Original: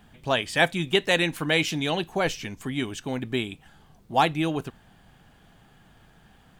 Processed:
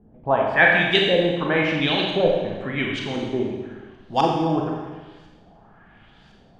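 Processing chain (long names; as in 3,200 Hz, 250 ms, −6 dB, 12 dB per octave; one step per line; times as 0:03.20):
auto-filter low-pass saw up 0.95 Hz 390–5,900 Hz
four-comb reverb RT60 1.3 s, combs from 29 ms, DRR −1 dB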